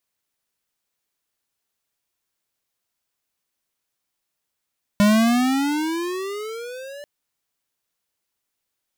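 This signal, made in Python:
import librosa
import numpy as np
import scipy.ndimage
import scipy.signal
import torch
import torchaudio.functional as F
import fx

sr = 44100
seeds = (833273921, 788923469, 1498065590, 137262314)

y = fx.riser_tone(sr, length_s=2.04, level_db=-14, wave='square', hz=202.0, rise_st=18.5, swell_db=-23.0)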